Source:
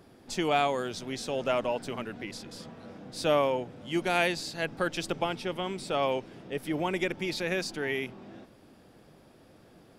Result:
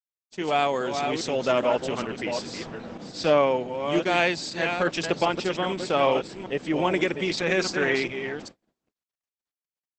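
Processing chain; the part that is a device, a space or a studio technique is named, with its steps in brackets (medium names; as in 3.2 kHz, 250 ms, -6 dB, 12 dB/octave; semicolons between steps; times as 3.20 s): chunks repeated in reverse 404 ms, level -7 dB; 3.11–3.52 s: low-pass 6.3 kHz 12 dB/octave; 7.59–8.06 s: dynamic bell 1.3 kHz, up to +5 dB, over -51 dBFS, Q 2.7; video call (high-pass 140 Hz 6 dB/octave; level rider gain up to 13.5 dB; gate -34 dBFS, range -57 dB; trim -5 dB; Opus 12 kbps 48 kHz)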